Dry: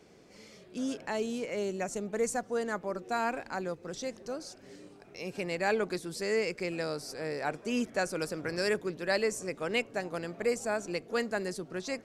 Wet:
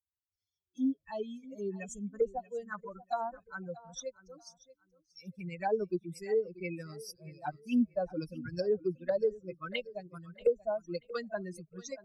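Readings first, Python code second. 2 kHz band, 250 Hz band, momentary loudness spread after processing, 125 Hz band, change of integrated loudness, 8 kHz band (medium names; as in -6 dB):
-10.5 dB, -0.5 dB, 14 LU, -1.5 dB, -2.5 dB, -9.5 dB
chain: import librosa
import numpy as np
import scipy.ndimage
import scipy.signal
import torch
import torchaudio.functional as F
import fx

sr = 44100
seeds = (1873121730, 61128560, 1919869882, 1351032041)

p1 = fx.bin_expand(x, sr, power=3.0)
p2 = fx.high_shelf(p1, sr, hz=5900.0, db=11.0)
p3 = fx.env_phaser(p2, sr, low_hz=200.0, high_hz=2300.0, full_db=-36.0)
p4 = fx.env_lowpass_down(p3, sr, base_hz=600.0, full_db=-33.0)
p5 = p4 + fx.echo_feedback(p4, sr, ms=634, feedback_pct=23, wet_db=-19.0, dry=0)
y = p5 * librosa.db_to_amplitude(7.0)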